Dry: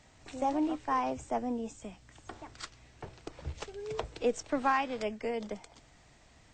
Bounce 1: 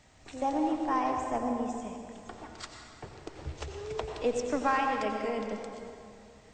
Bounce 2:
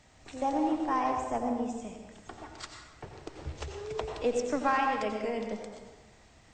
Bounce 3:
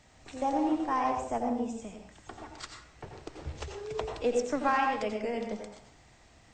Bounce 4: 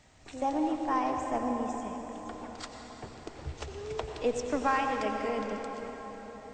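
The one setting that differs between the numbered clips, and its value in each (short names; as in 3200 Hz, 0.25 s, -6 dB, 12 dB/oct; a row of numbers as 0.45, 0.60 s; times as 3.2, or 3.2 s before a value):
plate-style reverb, RT60: 2.4, 1.2, 0.55, 5.1 s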